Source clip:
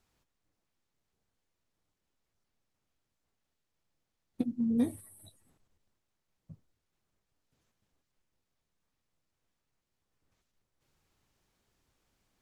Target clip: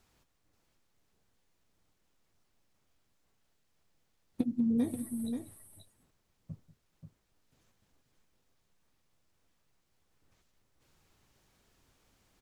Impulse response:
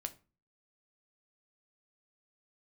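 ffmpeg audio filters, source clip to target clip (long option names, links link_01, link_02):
-af "acompressor=threshold=-35dB:ratio=2.5,aecho=1:1:189|533:0.126|0.422,volume=6dB"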